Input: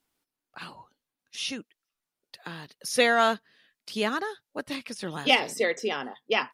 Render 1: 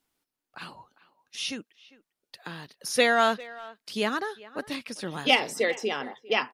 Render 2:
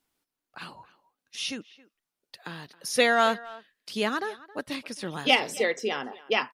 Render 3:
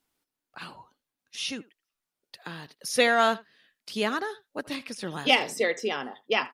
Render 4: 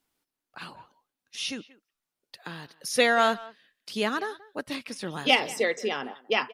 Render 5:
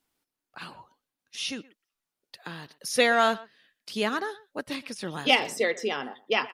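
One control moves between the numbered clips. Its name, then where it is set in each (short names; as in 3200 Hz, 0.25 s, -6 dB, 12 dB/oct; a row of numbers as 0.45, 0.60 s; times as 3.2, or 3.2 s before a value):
speakerphone echo, time: 400, 270, 80, 180, 120 ms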